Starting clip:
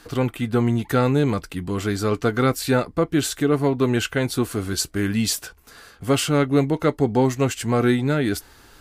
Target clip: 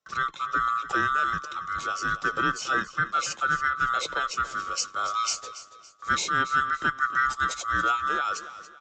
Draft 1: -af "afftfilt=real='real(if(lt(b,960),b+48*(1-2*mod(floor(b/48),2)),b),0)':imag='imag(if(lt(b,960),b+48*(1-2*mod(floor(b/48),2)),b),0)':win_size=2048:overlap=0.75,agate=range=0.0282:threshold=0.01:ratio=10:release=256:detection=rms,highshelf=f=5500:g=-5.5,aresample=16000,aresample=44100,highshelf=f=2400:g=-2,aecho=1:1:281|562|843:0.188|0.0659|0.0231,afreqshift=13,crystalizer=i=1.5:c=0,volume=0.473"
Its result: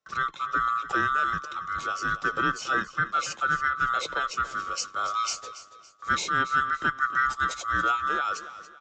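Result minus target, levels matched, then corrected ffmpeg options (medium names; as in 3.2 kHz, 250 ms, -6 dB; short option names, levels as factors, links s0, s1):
8 kHz band -3.0 dB
-af "afftfilt=real='real(if(lt(b,960),b+48*(1-2*mod(floor(b/48),2)),b),0)':imag='imag(if(lt(b,960),b+48*(1-2*mod(floor(b/48),2)),b),0)':win_size=2048:overlap=0.75,agate=range=0.0282:threshold=0.01:ratio=10:release=256:detection=rms,aresample=16000,aresample=44100,highshelf=f=2400:g=-2,aecho=1:1:281|562|843:0.188|0.0659|0.0231,afreqshift=13,crystalizer=i=1.5:c=0,volume=0.473"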